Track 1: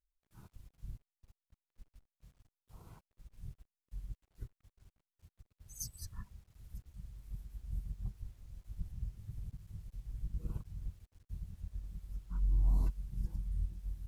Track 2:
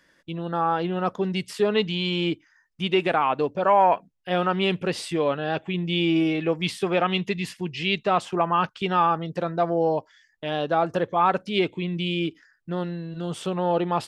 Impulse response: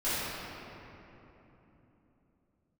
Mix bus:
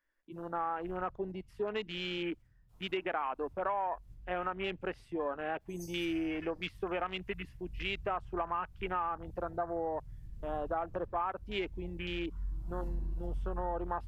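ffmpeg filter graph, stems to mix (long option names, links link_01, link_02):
-filter_complex "[0:a]volume=-12.5dB,asplit=2[link_01][link_02];[link_02]volume=-5dB[link_03];[1:a]highpass=360,afwtdn=0.0251,equalizer=frequency=500:width_type=o:width=1:gain=-5,equalizer=frequency=4000:width_type=o:width=1:gain=-8,equalizer=frequency=8000:width_type=o:width=1:gain=-11,volume=-3.5dB[link_04];[2:a]atrim=start_sample=2205[link_05];[link_03][link_05]afir=irnorm=-1:irlink=0[link_06];[link_01][link_04][link_06]amix=inputs=3:normalize=0,acompressor=threshold=-31dB:ratio=6"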